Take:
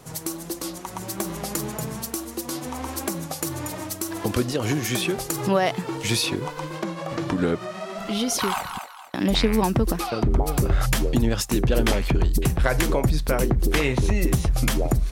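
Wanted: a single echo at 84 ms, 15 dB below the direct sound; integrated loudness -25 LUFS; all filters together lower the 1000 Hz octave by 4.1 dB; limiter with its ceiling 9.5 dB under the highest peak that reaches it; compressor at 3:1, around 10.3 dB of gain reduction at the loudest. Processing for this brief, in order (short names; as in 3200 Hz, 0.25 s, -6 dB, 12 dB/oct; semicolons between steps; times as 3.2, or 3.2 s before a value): bell 1000 Hz -5.5 dB; compressor 3:1, threshold -30 dBFS; limiter -22.5 dBFS; echo 84 ms -15 dB; gain +8.5 dB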